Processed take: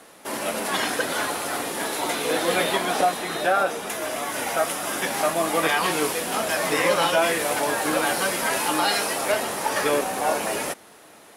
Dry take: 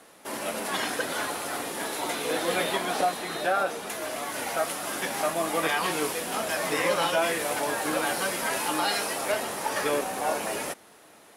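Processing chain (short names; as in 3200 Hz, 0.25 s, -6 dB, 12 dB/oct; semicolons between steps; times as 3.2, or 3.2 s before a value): 2.92–5.07 notch 4300 Hz, Q 13; gain +4.5 dB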